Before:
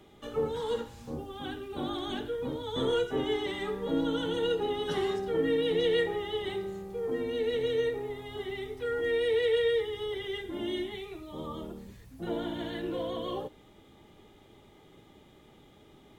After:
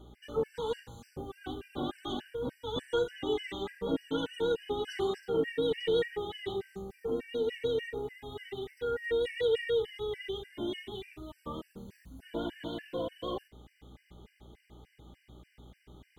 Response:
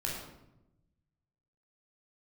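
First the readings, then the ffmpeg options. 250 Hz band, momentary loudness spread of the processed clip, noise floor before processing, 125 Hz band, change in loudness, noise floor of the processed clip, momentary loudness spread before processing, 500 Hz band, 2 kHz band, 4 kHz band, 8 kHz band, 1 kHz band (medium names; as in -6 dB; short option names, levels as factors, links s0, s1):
-3.5 dB, 13 LU, -57 dBFS, -3.0 dB, -3.0 dB, -70 dBFS, 13 LU, -3.0 dB, -3.5 dB, -3.0 dB, no reading, -3.0 dB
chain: -af "aeval=exprs='val(0)+0.00251*(sin(2*PI*60*n/s)+sin(2*PI*2*60*n/s)/2+sin(2*PI*3*60*n/s)/3+sin(2*PI*4*60*n/s)/4+sin(2*PI*5*60*n/s)/5)':c=same,afftfilt=real='re*gt(sin(2*PI*3.4*pts/sr)*(1-2*mod(floor(b*sr/1024/1500),2)),0)':imag='im*gt(sin(2*PI*3.4*pts/sr)*(1-2*mod(floor(b*sr/1024/1500),2)),0)':win_size=1024:overlap=0.75"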